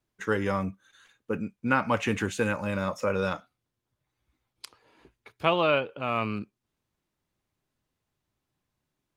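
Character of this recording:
background noise floor −84 dBFS
spectral slope −4.0 dB per octave

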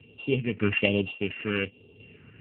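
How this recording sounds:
a buzz of ramps at a fixed pitch in blocks of 16 samples
phaser sweep stages 4, 1.2 Hz, lowest notch 680–1,700 Hz
sample-and-hold tremolo
AMR narrowband

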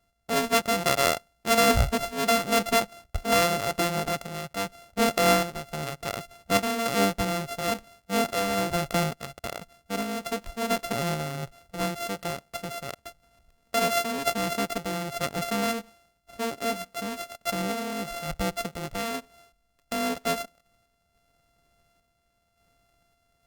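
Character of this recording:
a buzz of ramps at a fixed pitch in blocks of 64 samples
sample-and-hold tremolo
Opus

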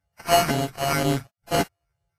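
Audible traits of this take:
a buzz of ramps at a fixed pitch in blocks of 64 samples
phaser sweep stages 4, 2.1 Hz, lowest notch 300–1,700 Hz
aliases and images of a low sample rate 3,600 Hz, jitter 0%
Ogg Vorbis

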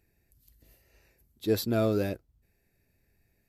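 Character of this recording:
background noise floor −73 dBFS
spectral slope −6.0 dB per octave

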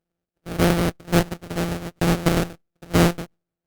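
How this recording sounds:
a buzz of ramps at a fixed pitch in blocks of 256 samples
sample-and-hold tremolo
aliases and images of a low sample rate 1,000 Hz, jitter 20%
Opus

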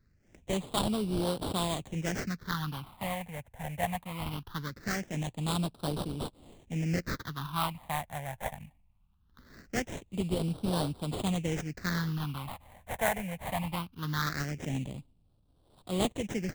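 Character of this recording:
aliases and images of a low sample rate 2,600 Hz, jitter 20%
phaser sweep stages 6, 0.21 Hz, lowest notch 330–1,900 Hz

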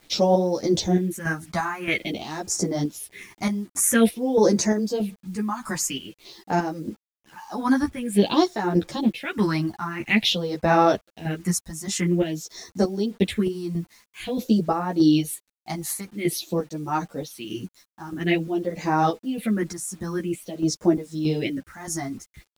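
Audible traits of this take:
phaser sweep stages 4, 0.49 Hz, lowest notch 450–3,000 Hz
chopped level 1.6 Hz, depth 60%, duty 55%
a quantiser's noise floor 10 bits, dither none
a shimmering, thickened sound

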